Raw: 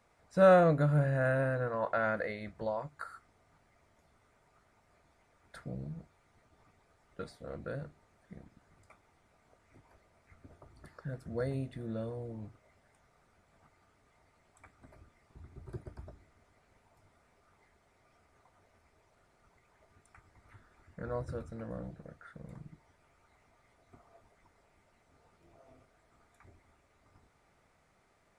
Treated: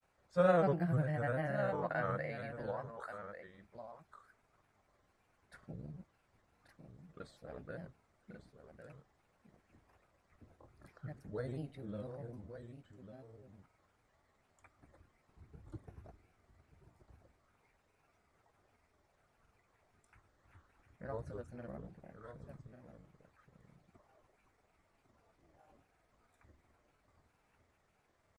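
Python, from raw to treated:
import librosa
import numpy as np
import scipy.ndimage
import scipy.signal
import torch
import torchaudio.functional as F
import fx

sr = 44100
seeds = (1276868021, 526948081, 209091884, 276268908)

y = x + 10.0 ** (-10.0 / 20.0) * np.pad(x, (int(1140 * sr / 1000.0), 0))[:len(x)]
y = fx.granulator(y, sr, seeds[0], grain_ms=100.0, per_s=20.0, spray_ms=29.0, spread_st=3)
y = y * 10.0 ** (-5.0 / 20.0)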